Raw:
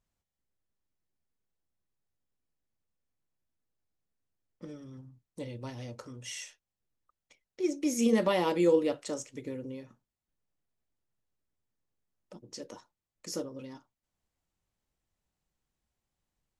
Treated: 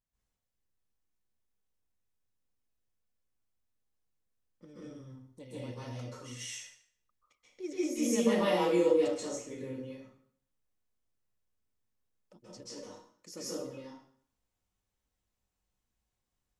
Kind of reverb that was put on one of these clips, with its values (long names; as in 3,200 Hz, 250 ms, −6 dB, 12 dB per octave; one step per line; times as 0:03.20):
dense smooth reverb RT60 0.59 s, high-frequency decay 0.9×, pre-delay 120 ms, DRR −9 dB
level −10 dB